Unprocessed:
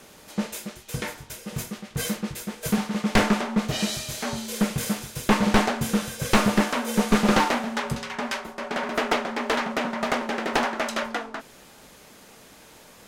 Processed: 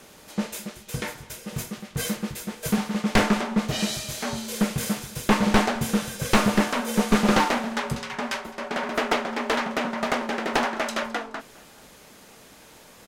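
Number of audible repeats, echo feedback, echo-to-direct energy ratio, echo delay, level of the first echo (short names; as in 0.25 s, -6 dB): 2, 40%, -21.5 dB, 0.212 s, -22.0 dB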